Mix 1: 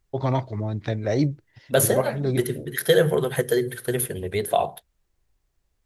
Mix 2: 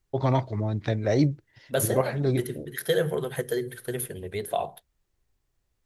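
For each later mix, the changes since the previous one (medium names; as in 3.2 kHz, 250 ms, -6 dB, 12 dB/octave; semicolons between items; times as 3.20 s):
second voice -6.5 dB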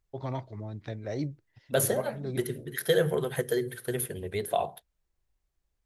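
first voice -11.0 dB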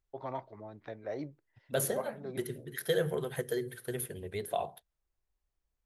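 first voice: add band-pass filter 900 Hz, Q 0.72; second voice -5.5 dB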